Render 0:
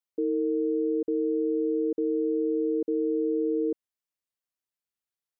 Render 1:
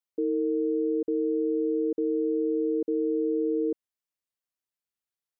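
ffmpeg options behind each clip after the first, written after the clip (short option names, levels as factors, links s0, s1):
-af anull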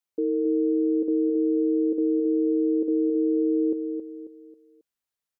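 -af "aecho=1:1:271|542|813|1084:0.473|0.175|0.0648|0.024,volume=1.26"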